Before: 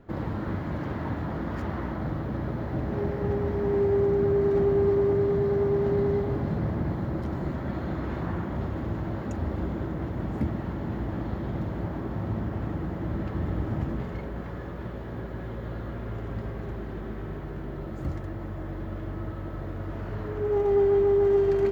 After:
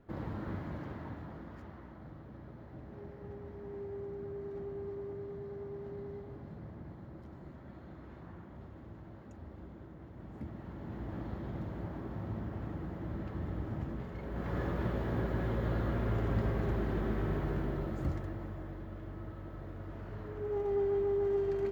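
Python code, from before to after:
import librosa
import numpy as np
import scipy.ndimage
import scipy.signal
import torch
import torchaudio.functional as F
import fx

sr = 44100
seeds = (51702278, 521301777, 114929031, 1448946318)

y = fx.gain(x, sr, db=fx.line((0.59, -8.5), (1.82, -19.0), (10.06, -19.0), (11.16, -9.0), (14.15, -9.0), (14.58, 2.0), (17.52, 2.0), (18.86, -10.0)))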